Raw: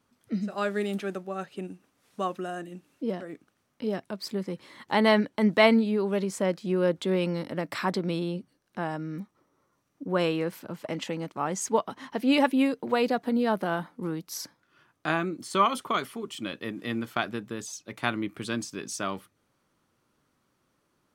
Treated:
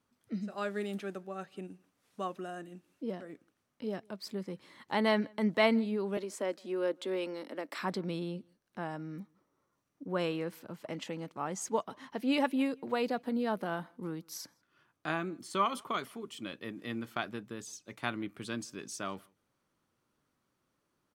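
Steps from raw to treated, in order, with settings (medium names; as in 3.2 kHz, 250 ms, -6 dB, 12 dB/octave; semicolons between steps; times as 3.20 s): 6.17–7.79 s: steep high-pass 240 Hz 36 dB/octave; echo from a far wall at 28 m, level -29 dB; trim -7 dB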